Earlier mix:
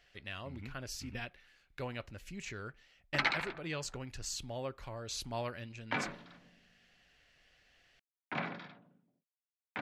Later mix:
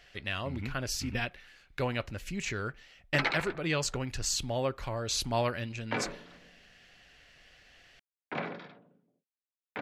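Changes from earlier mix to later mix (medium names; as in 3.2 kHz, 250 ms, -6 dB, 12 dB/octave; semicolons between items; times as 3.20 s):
speech +9.0 dB; background: add peaking EQ 450 Hz +9.5 dB 0.79 oct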